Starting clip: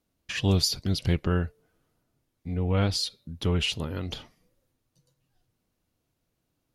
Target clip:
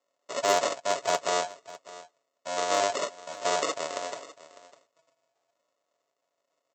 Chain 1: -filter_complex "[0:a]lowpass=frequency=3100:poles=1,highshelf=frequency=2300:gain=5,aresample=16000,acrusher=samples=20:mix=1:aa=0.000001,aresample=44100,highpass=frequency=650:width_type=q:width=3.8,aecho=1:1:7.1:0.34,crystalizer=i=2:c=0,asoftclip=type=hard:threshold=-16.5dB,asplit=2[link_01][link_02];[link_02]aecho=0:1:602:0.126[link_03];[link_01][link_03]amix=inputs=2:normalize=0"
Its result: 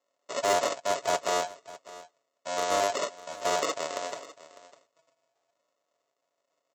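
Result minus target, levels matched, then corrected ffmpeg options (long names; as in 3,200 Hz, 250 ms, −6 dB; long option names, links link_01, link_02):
hard clipping: distortion +12 dB
-filter_complex "[0:a]lowpass=frequency=3100:poles=1,highshelf=frequency=2300:gain=5,aresample=16000,acrusher=samples=20:mix=1:aa=0.000001,aresample=44100,highpass=frequency=650:width_type=q:width=3.8,aecho=1:1:7.1:0.34,crystalizer=i=2:c=0,asoftclip=type=hard:threshold=-10dB,asplit=2[link_01][link_02];[link_02]aecho=0:1:602:0.126[link_03];[link_01][link_03]amix=inputs=2:normalize=0"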